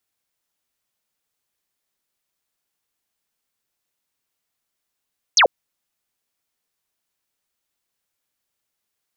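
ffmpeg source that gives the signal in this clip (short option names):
-f lavfi -i "aevalsrc='0.335*clip(t/0.002,0,1)*clip((0.09-t)/0.002,0,1)*sin(2*PI*6900*0.09/log(430/6900)*(exp(log(430/6900)*t/0.09)-1))':d=0.09:s=44100"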